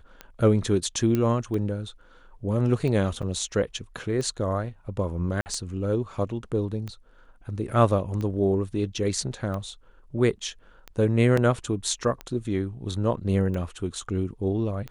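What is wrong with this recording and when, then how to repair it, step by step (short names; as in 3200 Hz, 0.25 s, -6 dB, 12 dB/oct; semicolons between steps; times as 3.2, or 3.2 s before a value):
tick 45 rpm -21 dBFS
1.15 pop -13 dBFS
3.22–3.23 gap 7 ms
5.41–5.46 gap 49 ms
11.37 gap 4.1 ms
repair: de-click; interpolate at 3.22, 7 ms; interpolate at 5.41, 49 ms; interpolate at 11.37, 4.1 ms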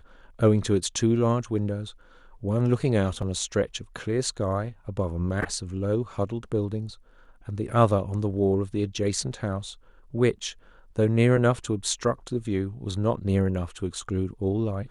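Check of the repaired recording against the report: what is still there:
1.15 pop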